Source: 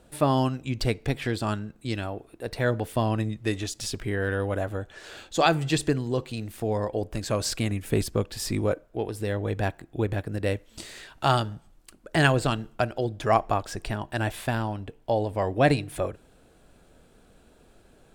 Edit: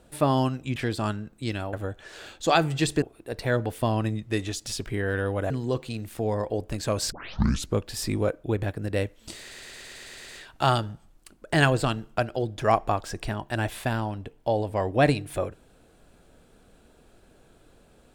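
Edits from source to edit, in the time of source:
0:00.76–0:01.19: remove
0:04.64–0:05.93: move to 0:02.16
0:07.55: tape start 0.63 s
0:08.87–0:09.94: remove
0:10.90: stutter 0.11 s, 9 plays

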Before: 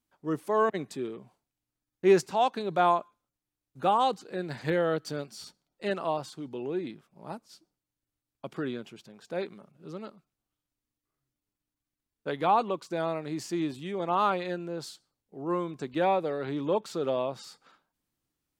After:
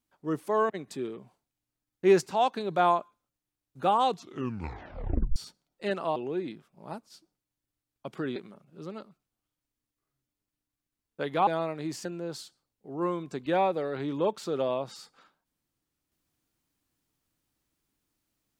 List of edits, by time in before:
0:00.54–0:00.87: fade out, to −6.5 dB
0:04.05: tape stop 1.31 s
0:06.16–0:06.55: remove
0:08.75–0:09.43: remove
0:12.54–0:12.94: remove
0:13.52–0:14.53: remove

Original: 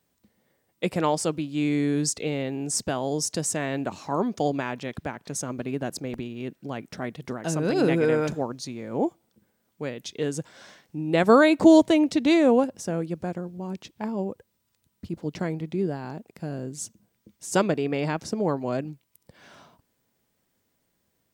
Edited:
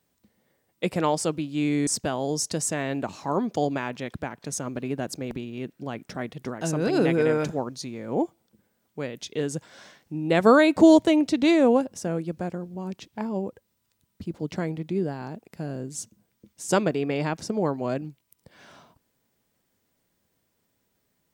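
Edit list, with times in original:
0:01.87–0:02.70: remove

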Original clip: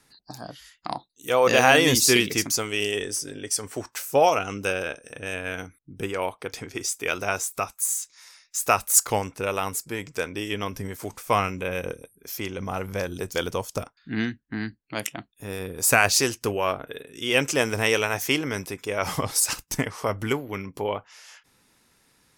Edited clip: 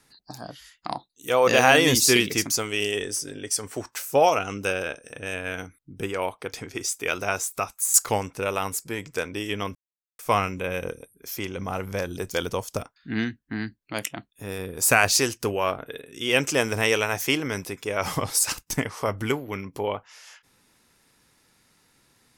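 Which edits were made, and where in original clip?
0:07.94–0:08.95: remove
0:10.76–0:11.20: silence

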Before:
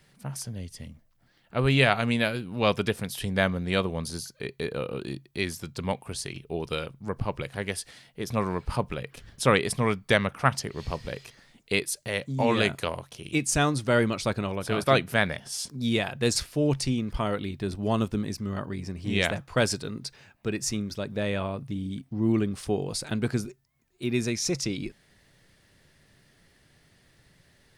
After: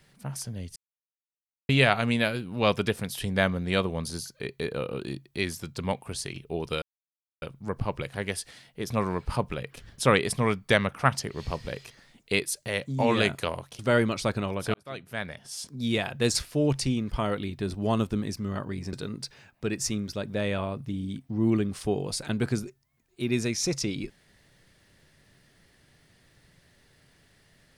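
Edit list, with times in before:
0:00.76–0:01.69: silence
0:06.82: splice in silence 0.60 s
0:13.19–0:13.80: remove
0:14.75–0:16.13: fade in
0:18.94–0:19.75: remove

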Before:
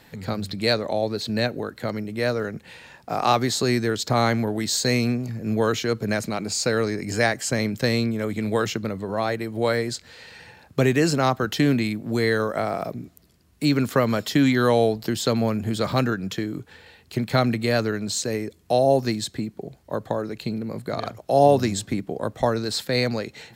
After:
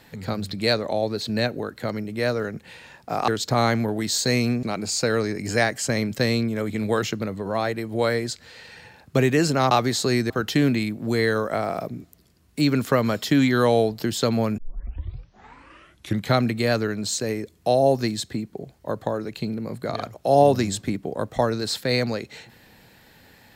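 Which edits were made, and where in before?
0:03.28–0:03.87: move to 0:11.34
0:05.22–0:06.26: remove
0:15.62: tape start 1.77 s

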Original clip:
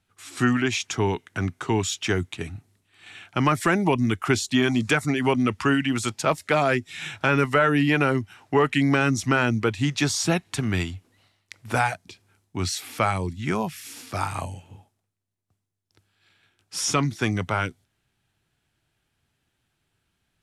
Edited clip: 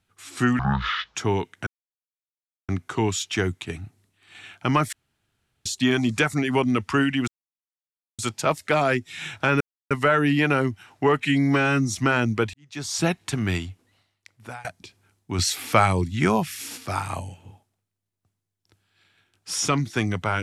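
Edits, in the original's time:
0:00.59–0:00.89: play speed 53%
0:01.40: splice in silence 1.02 s
0:03.64–0:04.37: fill with room tone
0:05.99: splice in silence 0.91 s
0:07.41: splice in silence 0.30 s
0:08.71–0:09.21: time-stretch 1.5×
0:09.79–0:10.25: fade in quadratic
0:10.88–0:11.90: fade out, to −22.5 dB
0:12.64–0:14.03: clip gain +5 dB

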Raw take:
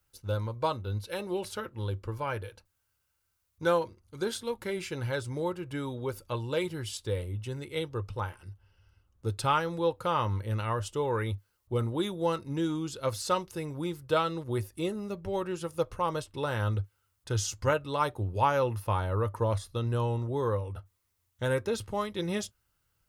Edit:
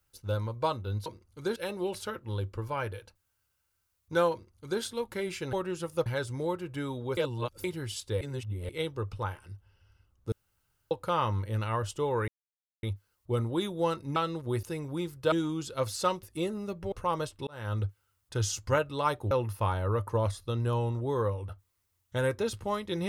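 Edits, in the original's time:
0:03.82–0:04.32: duplicate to 0:01.06
0:06.14–0:06.61: reverse
0:07.18–0:07.66: reverse
0:09.29–0:09.88: fill with room tone
0:11.25: splice in silence 0.55 s
0:12.58–0:13.49: swap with 0:14.18–0:14.65
0:15.34–0:15.87: move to 0:05.03
0:16.42–0:16.78: fade in
0:18.26–0:18.58: remove

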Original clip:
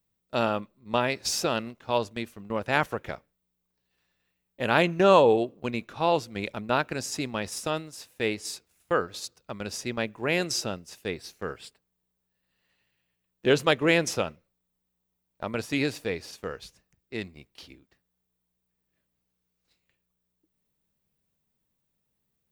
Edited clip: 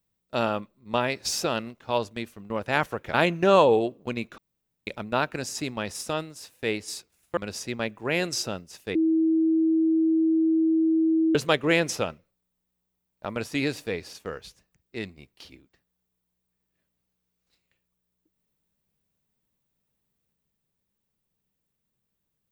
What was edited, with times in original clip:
0:03.14–0:04.71: remove
0:05.95–0:06.44: fill with room tone
0:08.94–0:09.55: remove
0:11.13–0:13.53: beep over 322 Hz −18.5 dBFS

